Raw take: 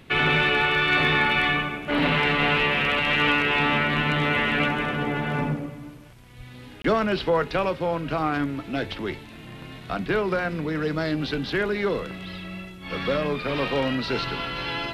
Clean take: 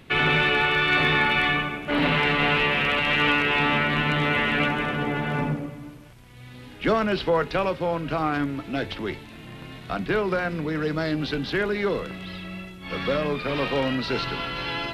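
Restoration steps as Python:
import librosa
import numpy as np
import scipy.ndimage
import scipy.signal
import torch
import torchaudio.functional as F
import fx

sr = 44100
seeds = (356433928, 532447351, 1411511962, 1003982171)

y = fx.highpass(x, sr, hz=140.0, slope=24, at=(6.37, 6.49), fade=0.02)
y = fx.fix_interpolate(y, sr, at_s=(6.82,), length_ms=23.0)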